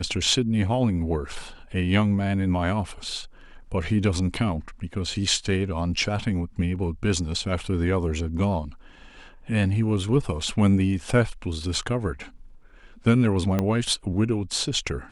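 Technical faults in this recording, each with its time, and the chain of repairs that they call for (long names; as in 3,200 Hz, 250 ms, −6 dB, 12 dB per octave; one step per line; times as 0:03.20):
0:13.59: click −11 dBFS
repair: click removal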